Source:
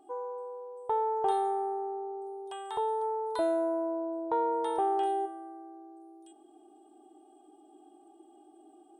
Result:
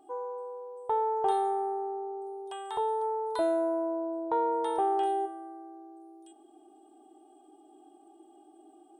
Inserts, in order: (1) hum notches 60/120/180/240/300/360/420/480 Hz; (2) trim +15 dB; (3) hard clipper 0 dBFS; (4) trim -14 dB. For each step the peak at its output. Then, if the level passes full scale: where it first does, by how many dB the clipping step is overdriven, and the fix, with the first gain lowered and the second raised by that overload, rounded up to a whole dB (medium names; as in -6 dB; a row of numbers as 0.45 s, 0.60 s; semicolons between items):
-18.0 dBFS, -3.0 dBFS, -3.0 dBFS, -17.0 dBFS; nothing clips